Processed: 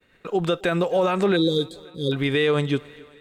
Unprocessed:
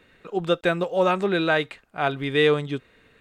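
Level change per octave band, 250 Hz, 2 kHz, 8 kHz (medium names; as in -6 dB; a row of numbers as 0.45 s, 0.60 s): +3.5 dB, -3.0 dB, no reading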